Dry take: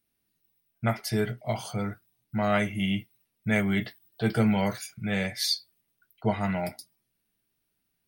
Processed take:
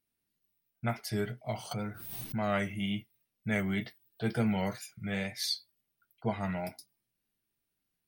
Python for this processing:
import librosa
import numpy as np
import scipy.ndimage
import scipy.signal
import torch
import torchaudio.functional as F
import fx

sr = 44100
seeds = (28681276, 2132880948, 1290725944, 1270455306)

y = fx.wow_flutter(x, sr, seeds[0], rate_hz=2.1, depth_cents=58.0)
y = fx.pre_swell(y, sr, db_per_s=39.0, at=(1.71, 2.77))
y = F.gain(torch.from_numpy(y), -6.0).numpy()